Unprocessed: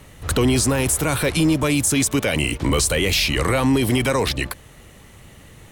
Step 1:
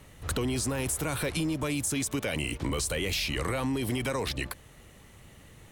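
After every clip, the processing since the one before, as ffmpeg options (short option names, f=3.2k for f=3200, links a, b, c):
-af "acompressor=threshold=-19dB:ratio=6,volume=-7.5dB"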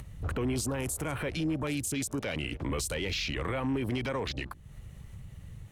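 -af "afwtdn=0.01,alimiter=level_in=6dB:limit=-24dB:level=0:latency=1:release=349,volume=-6dB,acompressor=mode=upward:threshold=-44dB:ratio=2.5,volume=6dB"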